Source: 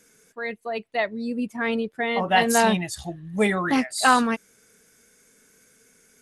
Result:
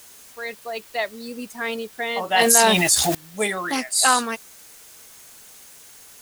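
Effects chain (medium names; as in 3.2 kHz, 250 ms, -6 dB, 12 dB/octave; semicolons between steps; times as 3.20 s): tone controls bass -12 dB, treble +12 dB; added noise white -47 dBFS; 2.39–3.15 s: level flattener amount 70%; trim -1 dB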